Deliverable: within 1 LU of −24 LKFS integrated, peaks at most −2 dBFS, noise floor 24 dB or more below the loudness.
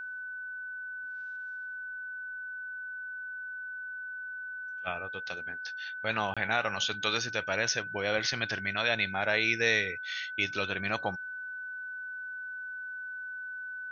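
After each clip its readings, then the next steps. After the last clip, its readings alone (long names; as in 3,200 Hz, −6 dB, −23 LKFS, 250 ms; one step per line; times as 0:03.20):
number of dropouts 1; longest dropout 26 ms; interfering tone 1,500 Hz; level of the tone −37 dBFS; integrated loudness −33.0 LKFS; sample peak −13.0 dBFS; target loudness −24.0 LKFS
→ repair the gap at 0:06.34, 26 ms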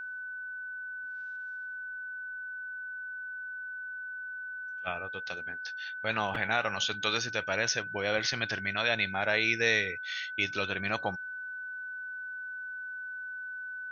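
number of dropouts 0; interfering tone 1,500 Hz; level of the tone −37 dBFS
→ notch filter 1,500 Hz, Q 30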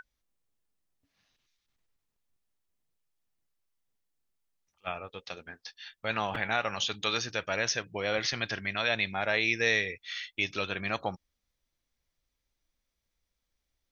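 interfering tone none found; integrated loudness −30.5 LKFS; sample peak −12.5 dBFS; target loudness −24.0 LKFS
→ level +6.5 dB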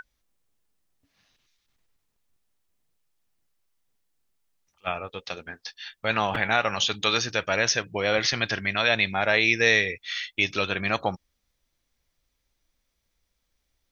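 integrated loudness −24.0 LKFS; sample peak −6.0 dBFS; background noise floor −77 dBFS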